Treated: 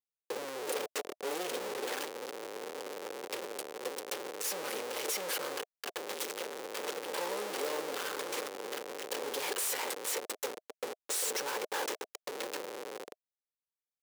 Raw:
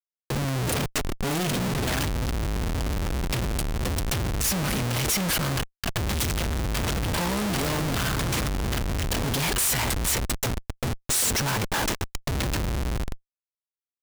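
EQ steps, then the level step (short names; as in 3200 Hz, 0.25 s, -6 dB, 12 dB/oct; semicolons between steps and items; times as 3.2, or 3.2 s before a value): ladder high-pass 400 Hz, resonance 55%; Butterworth band-stop 660 Hz, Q 7.7; 0.0 dB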